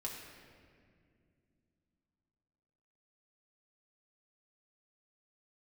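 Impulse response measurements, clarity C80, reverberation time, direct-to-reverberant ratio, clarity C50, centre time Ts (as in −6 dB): 4.0 dB, 2.2 s, −2.5 dB, 2.5 dB, 76 ms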